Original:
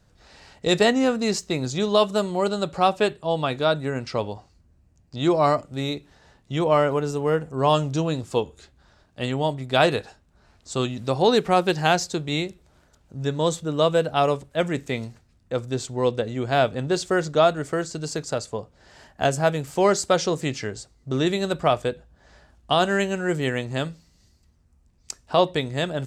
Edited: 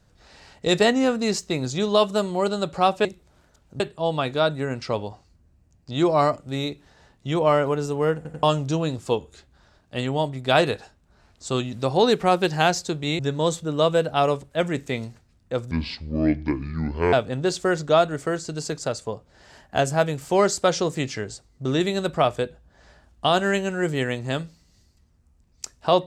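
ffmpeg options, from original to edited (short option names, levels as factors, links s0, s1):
-filter_complex "[0:a]asplit=9[s0][s1][s2][s3][s4][s5][s6][s7][s8];[s0]atrim=end=3.052[s9];[s1]atrim=start=12.438:end=13.192[s10];[s2]atrim=start=3.048:end=7.502[s11];[s3]atrim=start=7.408:end=7.502[s12];[s4]atrim=start=7.408:end=7.502[s13];[s5]atrim=start=7.678:end=12.442[s14];[s6]atrim=start=13.188:end=15.714[s15];[s7]atrim=start=15.71:end=16.59,asetpts=PTS-STARTPTS,asetrate=27342,aresample=44100[s16];[s8]atrim=start=16.586[s17];[s9][s10]acrossfade=d=0.004:c1=hsin:c2=hsin[s18];[s18][s11]acrossfade=d=0.004:c1=hsin:c2=hsin[s19];[s19][s12]acrossfade=d=0.004:c1=hsin:c2=hsin[s20];[s20][s13]acrossfade=d=0.004:c1=hsin:c2=hsin[s21];[s21][s14]acrossfade=d=0.004:c1=hsin:c2=hsin[s22];[s22][s15]acrossfade=d=0.004:c1=hsin:c2=hsin[s23];[s23][s16]acrossfade=d=0.004:c1=hsin:c2=hsin[s24];[s24][s17]acrossfade=d=0.004:c1=hsin:c2=hsin"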